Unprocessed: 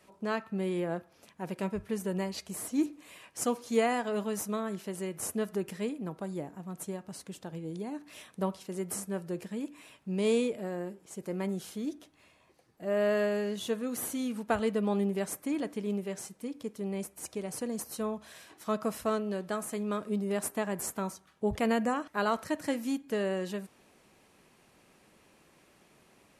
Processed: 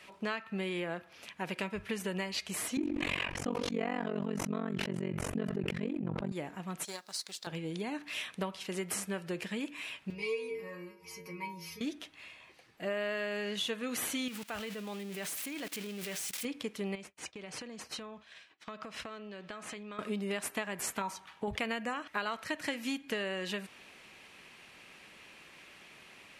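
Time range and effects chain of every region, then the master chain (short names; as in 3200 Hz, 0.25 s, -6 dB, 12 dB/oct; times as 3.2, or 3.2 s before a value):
2.77–6.32 tilt -4.5 dB/oct + AM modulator 46 Hz, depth 95% + sustainer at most 23 dB/s
6.85–7.47 G.711 law mismatch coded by A + HPF 770 Hz 6 dB/oct + resonant high shelf 3500 Hz +6.5 dB, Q 3
10.1–11.81 ripple EQ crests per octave 0.84, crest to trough 17 dB + upward compressor, threshold -30 dBFS + metallic resonator 82 Hz, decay 0.76 s, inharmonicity 0.008
14.28–16.45 switching spikes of -30.5 dBFS + level quantiser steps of 21 dB
16.95–19.99 expander -43 dBFS + LPF 6000 Hz + compressor 16:1, threshold -43 dBFS
21.01–21.48 compressor 2:1, threshold -33 dBFS + bell 900 Hz +13 dB 0.4 oct
whole clip: bell 2600 Hz +14.5 dB 2.1 oct; compressor 6:1, threshold -32 dBFS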